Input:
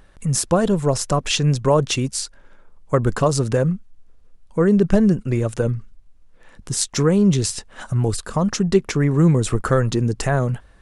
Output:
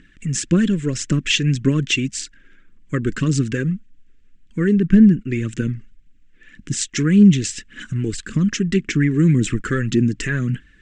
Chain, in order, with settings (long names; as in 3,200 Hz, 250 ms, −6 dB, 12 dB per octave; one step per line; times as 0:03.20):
0:04.73–0:05.30: high-shelf EQ 3,100 Hz −11 dB
phase shifter 1.8 Hz, delay 2.6 ms, feedback 40%
drawn EQ curve 100 Hz 0 dB, 150 Hz +7 dB, 300 Hz +13 dB, 780 Hz −24 dB, 1,700 Hz +12 dB, 3,000 Hz +12 dB, 4,400 Hz +2 dB, 7,700 Hz +7 dB, 12,000 Hz −28 dB
level −7 dB